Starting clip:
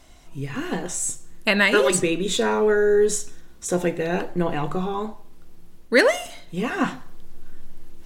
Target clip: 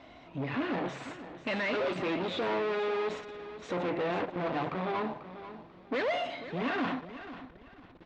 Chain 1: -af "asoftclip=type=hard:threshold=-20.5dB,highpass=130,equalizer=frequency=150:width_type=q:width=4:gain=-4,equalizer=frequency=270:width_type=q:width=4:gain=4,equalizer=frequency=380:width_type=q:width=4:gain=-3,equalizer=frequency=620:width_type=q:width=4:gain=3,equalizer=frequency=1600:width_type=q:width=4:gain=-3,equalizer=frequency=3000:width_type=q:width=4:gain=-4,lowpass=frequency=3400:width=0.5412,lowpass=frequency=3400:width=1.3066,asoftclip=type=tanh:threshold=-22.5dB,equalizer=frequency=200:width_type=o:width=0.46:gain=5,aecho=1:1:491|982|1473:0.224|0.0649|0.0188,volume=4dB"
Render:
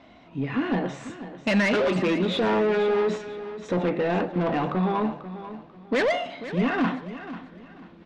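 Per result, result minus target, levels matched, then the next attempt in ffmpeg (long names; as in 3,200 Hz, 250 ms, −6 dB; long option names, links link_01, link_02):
hard clipping: distortion −6 dB; 250 Hz band +2.0 dB
-af "asoftclip=type=hard:threshold=-32.5dB,highpass=130,equalizer=frequency=150:width_type=q:width=4:gain=-4,equalizer=frequency=270:width_type=q:width=4:gain=4,equalizer=frequency=380:width_type=q:width=4:gain=-3,equalizer=frequency=620:width_type=q:width=4:gain=3,equalizer=frequency=1600:width_type=q:width=4:gain=-3,equalizer=frequency=3000:width_type=q:width=4:gain=-4,lowpass=frequency=3400:width=0.5412,lowpass=frequency=3400:width=1.3066,asoftclip=type=tanh:threshold=-22.5dB,equalizer=frequency=200:width_type=o:width=0.46:gain=5,aecho=1:1:491|982|1473:0.224|0.0649|0.0188,volume=4dB"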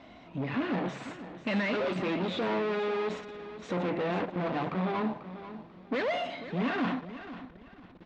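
250 Hz band +2.5 dB
-af "asoftclip=type=hard:threshold=-32.5dB,highpass=130,equalizer=frequency=150:width_type=q:width=4:gain=-4,equalizer=frequency=270:width_type=q:width=4:gain=4,equalizer=frequency=380:width_type=q:width=4:gain=-3,equalizer=frequency=620:width_type=q:width=4:gain=3,equalizer=frequency=1600:width_type=q:width=4:gain=-3,equalizer=frequency=3000:width_type=q:width=4:gain=-4,lowpass=frequency=3400:width=0.5412,lowpass=frequency=3400:width=1.3066,asoftclip=type=tanh:threshold=-22.5dB,equalizer=frequency=200:width_type=o:width=0.46:gain=-3.5,aecho=1:1:491|982|1473:0.224|0.0649|0.0188,volume=4dB"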